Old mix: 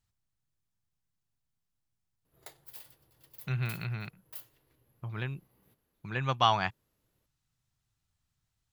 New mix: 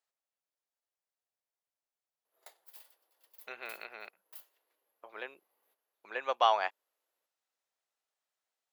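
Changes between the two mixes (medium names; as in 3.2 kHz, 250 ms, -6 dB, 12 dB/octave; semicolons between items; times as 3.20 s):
speech: add graphic EQ 125/250/500/2000 Hz -8/+6/+10/+3 dB; master: add ladder high-pass 460 Hz, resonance 25%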